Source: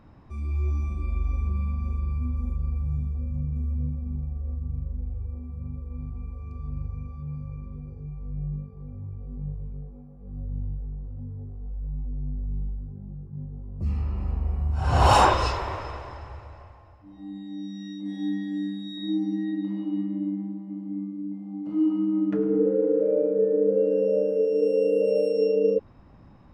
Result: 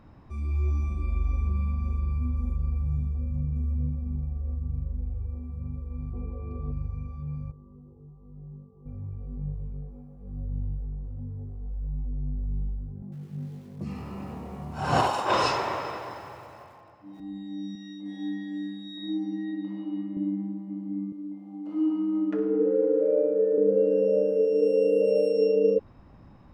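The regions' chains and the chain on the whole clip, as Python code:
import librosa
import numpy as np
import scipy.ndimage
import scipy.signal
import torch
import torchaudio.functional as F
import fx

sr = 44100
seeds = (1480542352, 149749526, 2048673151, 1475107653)

y = fx.chain(x, sr, fx.lowpass(hz=3400.0, slope=12),
    fx.peak_eq(hz=430.0, db=11.5, octaves=1.8), at=(6.13, 6.72))
y = fx.chain(y, sr, fx.cheby_ripple(hz=1300.0, ripple_db=9),
    fx.low_shelf(hz=110.0, db=-11.0), at=(7.51, 8.86))
y = fx.chain(y, sr, fx.highpass(hz=140.0, slope=24),
    fx.over_compress(threshold_db=-22.0, ratio=-0.5),
    fx.echo_crushed(ms=94, feedback_pct=55, bits=8, wet_db=-14.0), at=(13.02, 17.2))
y = fx.chain(y, sr, fx.highpass(hz=350.0, slope=6),
    fx.high_shelf(hz=5500.0, db=-7.0), at=(17.75, 20.17))
y = fx.chain(y, sr, fx.highpass(hz=350.0, slope=12),
    fx.room_flutter(wall_m=10.4, rt60_s=0.29), at=(21.12, 23.58))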